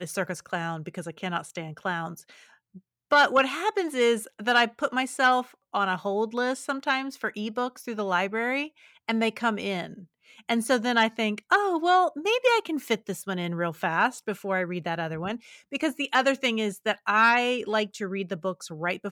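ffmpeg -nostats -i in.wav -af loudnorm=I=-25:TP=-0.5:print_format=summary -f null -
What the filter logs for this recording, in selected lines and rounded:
Input Integrated:    -26.1 LUFS
Input True Peak:     -11.8 dBTP
Input LRA:             4.3 LU
Input Threshold:     -36.5 LUFS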